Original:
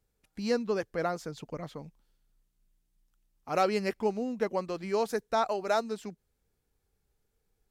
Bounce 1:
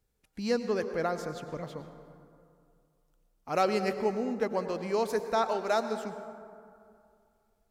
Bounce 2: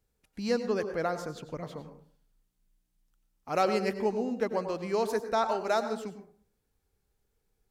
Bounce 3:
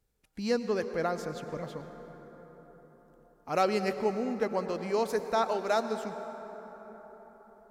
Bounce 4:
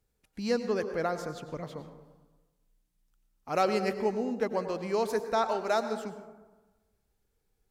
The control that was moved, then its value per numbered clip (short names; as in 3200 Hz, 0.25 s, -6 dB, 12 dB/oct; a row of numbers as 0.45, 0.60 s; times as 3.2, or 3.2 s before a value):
plate-style reverb, RT60: 2.4, 0.52, 5.1, 1.2 s